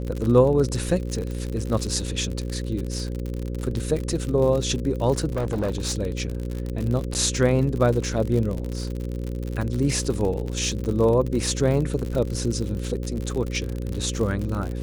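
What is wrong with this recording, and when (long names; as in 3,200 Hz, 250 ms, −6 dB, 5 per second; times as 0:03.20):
mains buzz 60 Hz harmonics 9 −29 dBFS
surface crackle 63 per second −27 dBFS
0:05.32–0:05.95: clipping −21 dBFS
0:07.14–0:07.15: drop-out 9.1 ms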